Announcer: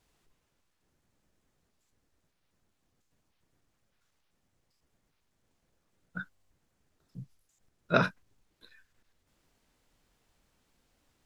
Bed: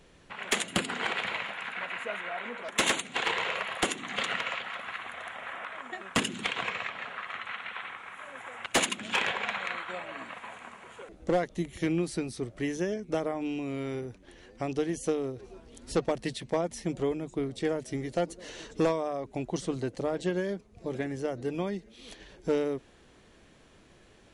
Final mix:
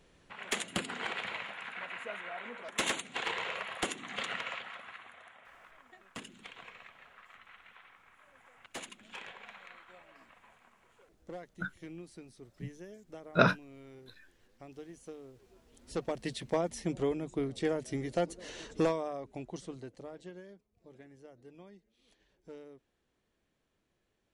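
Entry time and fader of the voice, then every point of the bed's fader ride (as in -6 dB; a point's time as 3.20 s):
5.45 s, +1.0 dB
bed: 4.57 s -6 dB
5.51 s -18 dB
15.28 s -18 dB
16.41 s -2 dB
18.77 s -2 dB
20.65 s -21.5 dB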